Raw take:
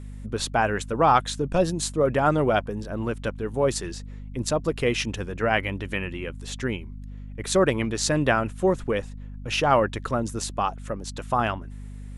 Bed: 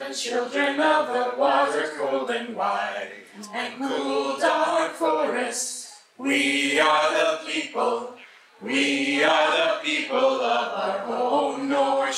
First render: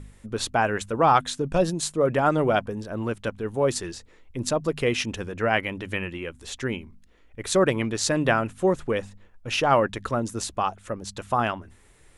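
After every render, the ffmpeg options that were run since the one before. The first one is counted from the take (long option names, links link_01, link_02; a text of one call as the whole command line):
ffmpeg -i in.wav -af "bandreject=frequency=50:width_type=h:width=4,bandreject=frequency=100:width_type=h:width=4,bandreject=frequency=150:width_type=h:width=4,bandreject=frequency=200:width_type=h:width=4,bandreject=frequency=250:width_type=h:width=4" out.wav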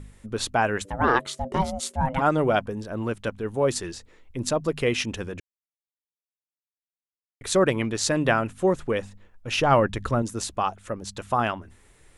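ffmpeg -i in.wav -filter_complex "[0:a]asplit=3[link_01][link_02][link_03];[link_01]afade=type=out:start_time=0.84:duration=0.02[link_04];[link_02]aeval=exprs='val(0)*sin(2*PI*390*n/s)':channel_layout=same,afade=type=in:start_time=0.84:duration=0.02,afade=type=out:start_time=2.2:duration=0.02[link_05];[link_03]afade=type=in:start_time=2.2:duration=0.02[link_06];[link_04][link_05][link_06]amix=inputs=3:normalize=0,asettb=1/sr,asplit=3[link_07][link_08][link_09];[link_07]atrim=end=9.574[link_10];[link_08]atrim=start=9.57:end=10.22,asetpts=PTS-STARTPTS,afade=type=in:duration=0.004:curve=qsin,afade=type=out:start_time=0.646:duration=0.004:curve=qsin,lowshelf=frequency=150:gain=9.5[link_11];[link_09]atrim=start=10.216[link_12];[link_10][link_11]acrossfade=duration=0.004:curve1=hsin:curve2=qsin[link_13];[link_13][link_12]acrossfade=duration=0.004:curve1=qsin:curve2=hsin,asplit=3[link_14][link_15][link_16];[link_14]atrim=end=5.4,asetpts=PTS-STARTPTS,afade=type=out:start_time=5.396:duration=0.004:curve=hsin[link_17];[link_15]atrim=start=5.4:end=7.41,asetpts=PTS-STARTPTS,volume=0[link_18];[link_16]atrim=start=7.41,asetpts=PTS-STARTPTS,afade=type=in:duration=0.004:curve=hsin[link_19];[link_17][link_18][link_19]concat=n=3:v=0:a=1" out.wav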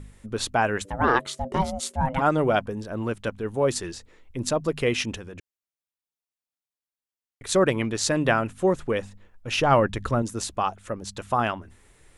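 ffmpeg -i in.wav -filter_complex "[0:a]asettb=1/sr,asplit=3[link_01][link_02][link_03];[link_01]atrim=end=5.174[link_04];[link_02]atrim=start=5.17:end=7.49,asetpts=PTS-STARTPTS,afade=type=in:duration=0.004:curve=qsin,afade=type=out:start_time=2.316:duration=0.004:curve=qsin,acompressor=threshold=-38dB:ratio=2.5:attack=3.2:release=140:knee=1:detection=peak[link_05];[link_03]atrim=start=7.486[link_06];[link_04][link_05]acrossfade=duration=0.004:curve1=hsin:curve2=qsin[link_07];[link_07][link_06]acrossfade=duration=0.004:curve1=qsin:curve2=hsin" out.wav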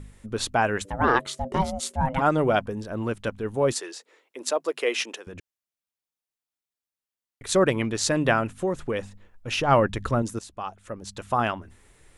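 ffmpeg -i in.wav -filter_complex "[0:a]asettb=1/sr,asplit=3[link_01][link_02][link_03];[link_01]atrim=end=3.734[link_04];[link_02]atrim=start=3.73:end=5.27,asetpts=PTS-STARTPTS,afade=type=in:duration=0.004:curve=qsin,afade=type=out:start_time=1.536:duration=0.004:curve=qsin,highpass=frequency=370:width=0.5412,highpass=frequency=370:width=1.3066[link_05];[link_03]atrim=start=5.266[link_06];[link_04][link_05]acrossfade=duration=0.004:curve1=hsin:curve2=qsin[link_07];[link_07][link_06]acrossfade=duration=0.004:curve1=qsin:curve2=hsin,asplit=3[link_08][link_09][link_10];[link_08]afade=type=out:start_time=8.55:duration=0.02[link_11];[link_09]acompressor=threshold=-23dB:ratio=2.5:attack=3.2:release=140:knee=1:detection=peak,afade=type=in:start_time=8.55:duration=0.02,afade=type=out:start_time=9.67:duration=0.02[link_12];[link_10]afade=type=in:start_time=9.67:duration=0.02[link_13];[link_11][link_12][link_13]amix=inputs=3:normalize=0,asplit=2[link_14][link_15];[link_14]atrim=end=10.39,asetpts=PTS-STARTPTS,afade=type=out:start_time=10.386:duration=0.004:curve=hsin:silence=0.199526[link_16];[link_15]atrim=start=10.39,asetpts=PTS-STARTPTS,afade=type=in:duration=1.03:silence=0.199526[link_17];[link_16][link_17]concat=n=2:v=0:a=1" out.wav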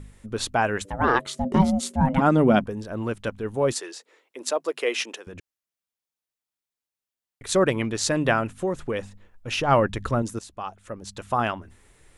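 ffmpeg -i in.wav -filter_complex "[0:a]asettb=1/sr,asplit=3[link_01][link_02][link_03];[link_01]atrim=end=1.354[link_04];[link_02]atrim=start=1.35:end=2.64,asetpts=PTS-STARTPTS,afade=type=in:duration=0.004:curve=qsin,afade=type=out:start_time=1.286:duration=0.004:curve=qsin,equalizer=frequency=220:width_type=o:width=0.84:gain=13.5[link_05];[link_03]atrim=start=2.636[link_06];[link_04][link_05]acrossfade=duration=0.004:curve1=hsin:curve2=qsin[link_07];[link_07][link_06]acrossfade=duration=0.004:curve1=qsin:curve2=hsin" out.wav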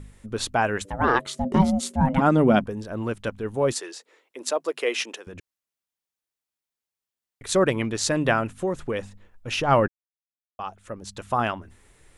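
ffmpeg -i in.wav -filter_complex "[0:a]asplit=3[link_01][link_02][link_03];[link_01]atrim=end=9.88,asetpts=PTS-STARTPTS,afade=type=out:start_time=9.876:duration=0.004:curve=hsin[link_04];[link_02]atrim=start=9.88:end=10.59,asetpts=PTS-STARTPTS,volume=0[link_05];[link_03]atrim=start=10.59,asetpts=PTS-STARTPTS,afade=type=in:duration=0.004:curve=hsin[link_06];[link_04][link_05][link_06]concat=n=3:v=0:a=1" out.wav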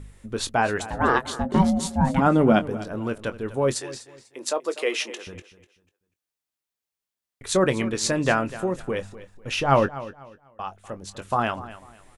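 ffmpeg -i in.wav -filter_complex "[0:a]asplit=2[link_01][link_02];[link_02]adelay=22,volume=-11.5dB[link_03];[link_01][link_03]amix=inputs=2:normalize=0,aecho=1:1:247|494|741:0.158|0.0444|0.0124" out.wav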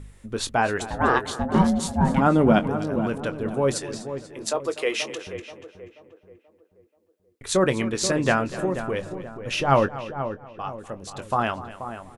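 ffmpeg -i in.wav -filter_complex "[0:a]asplit=2[link_01][link_02];[link_02]adelay=482,lowpass=frequency=1300:poles=1,volume=-9.5dB,asplit=2[link_03][link_04];[link_04]adelay=482,lowpass=frequency=1300:poles=1,volume=0.45,asplit=2[link_05][link_06];[link_06]adelay=482,lowpass=frequency=1300:poles=1,volume=0.45,asplit=2[link_07][link_08];[link_08]adelay=482,lowpass=frequency=1300:poles=1,volume=0.45,asplit=2[link_09][link_10];[link_10]adelay=482,lowpass=frequency=1300:poles=1,volume=0.45[link_11];[link_01][link_03][link_05][link_07][link_09][link_11]amix=inputs=6:normalize=0" out.wav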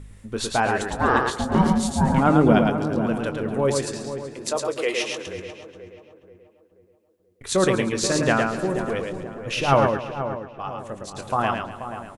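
ffmpeg -i in.wav -af "aecho=1:1:110:0.631" out.wav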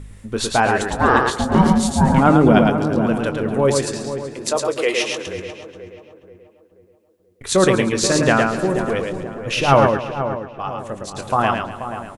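ffmpeg -i in.wav -af "volume=5dB,alimiter=limit=-2dB:level=0:latency=1" out.wav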